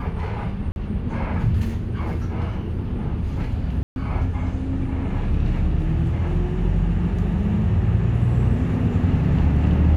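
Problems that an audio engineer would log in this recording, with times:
0:00.72–0:00.76: drop-out 41 ms
0:03.83–0:03.96: drop-out 131 ms

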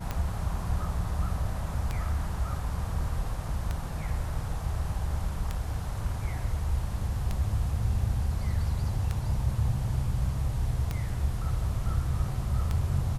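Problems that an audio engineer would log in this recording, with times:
scratch tick 33 1/3 rpm −17 dBFS

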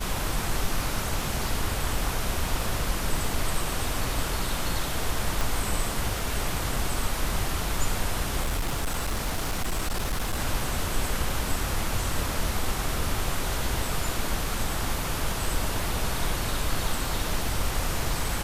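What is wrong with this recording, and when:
surface crackle 19 per second −33 dBFS
0:05.41: click
0:08.42–0:10.40: clipping −23 dBFS

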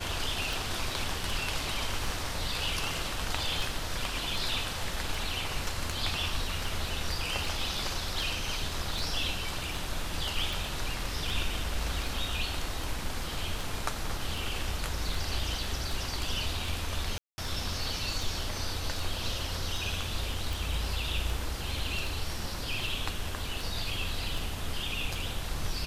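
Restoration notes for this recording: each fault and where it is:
scratch tick 78 rpm
0:17.18–0:17.38: drop-out 200 ms

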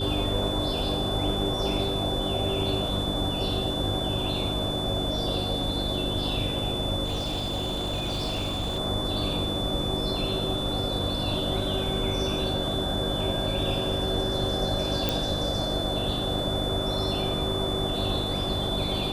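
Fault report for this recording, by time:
mains hum 50 Hz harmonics 6 −33 dBFS
whistle 3,500 Hz −31 dBFS
0:07.04–0:08.79: clipping −25 dBFS
0:15.09: click

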